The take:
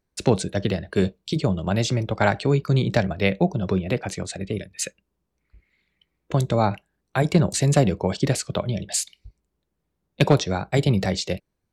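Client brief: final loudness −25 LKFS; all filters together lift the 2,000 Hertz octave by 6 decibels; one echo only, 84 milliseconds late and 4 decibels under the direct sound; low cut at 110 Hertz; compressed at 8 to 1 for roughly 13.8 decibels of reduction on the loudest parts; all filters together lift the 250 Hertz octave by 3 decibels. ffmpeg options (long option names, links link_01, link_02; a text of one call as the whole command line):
ffmpeg -i in.wav -af "highpass=110,equalizer=frequency=250:width_type=o:gain=5,equalizer=frequency=2000:width_type=o:gain=7.5,acompressor=threshold=-25dB:ratio=8,aecho=1:1:84:0.631,volume=4.5dB" out.wav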